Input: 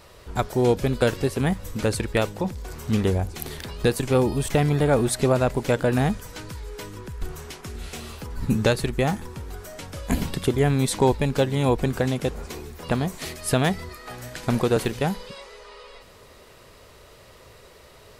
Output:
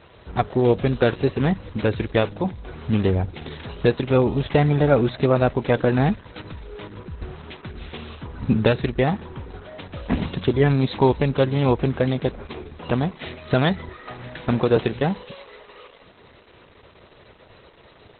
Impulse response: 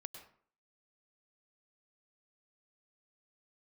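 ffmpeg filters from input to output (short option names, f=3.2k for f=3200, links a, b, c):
-af "highpass=57,volume=3dB" -ar 48000 -c:a libopus -b:a 8k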